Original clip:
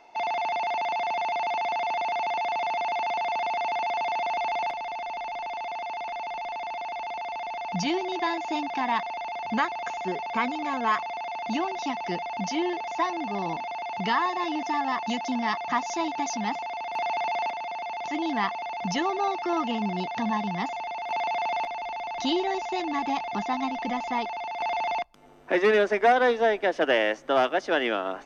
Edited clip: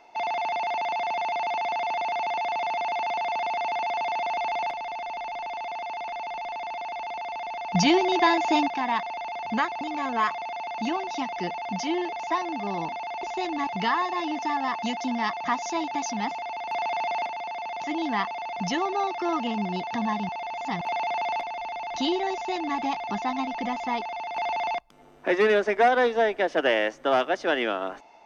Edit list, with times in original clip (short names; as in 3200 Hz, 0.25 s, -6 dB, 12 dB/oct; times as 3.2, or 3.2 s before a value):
7.75–8.68 gain +7 dB
9.81–10.49 cut
20.53–21.05 reverse
22.58–23.02 copy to 13.91